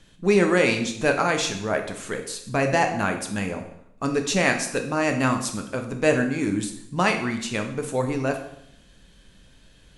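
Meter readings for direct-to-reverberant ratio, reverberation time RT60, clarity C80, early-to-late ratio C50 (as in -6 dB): 4.0 dB, 0.75 s, 11.0 dB, 8.5 dB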